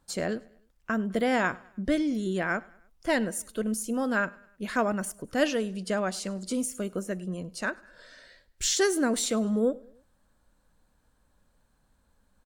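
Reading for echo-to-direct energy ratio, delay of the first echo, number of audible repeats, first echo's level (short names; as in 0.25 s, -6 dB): -23.0 dB, 0.102 s, 2, -24.0 dB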